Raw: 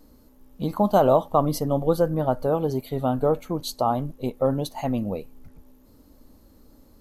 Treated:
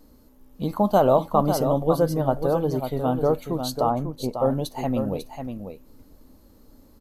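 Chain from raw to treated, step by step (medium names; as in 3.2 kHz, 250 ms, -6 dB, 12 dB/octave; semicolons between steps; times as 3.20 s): 3.89–4.39 s: low-pass 1.6 kHz 12 dB/octave; delay 546 ms -7.5 dB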